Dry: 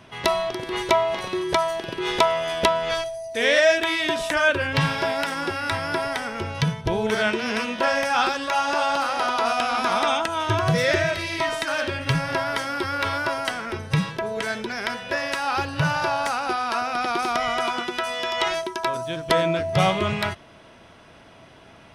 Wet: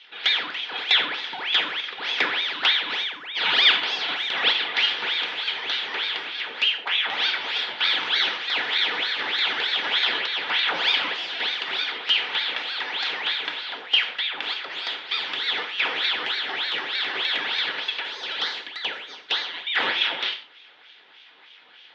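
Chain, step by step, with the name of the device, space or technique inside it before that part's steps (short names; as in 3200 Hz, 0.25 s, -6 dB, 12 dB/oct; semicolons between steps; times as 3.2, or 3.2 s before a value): 17.97–19.67 steep high-pass 730 Hz 96 dB/oct; voice changer toy (ring modulator with a swept carrier 1700 Hz, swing 80%, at 3.3 Hz; speaker cabinet 540–4000 Hz, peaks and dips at 620 Hz -9 dB, 1100 Hz -8 dB, 3400 Hz +8 dB); non-linear reverb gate 0.17 s falling, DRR 5 dB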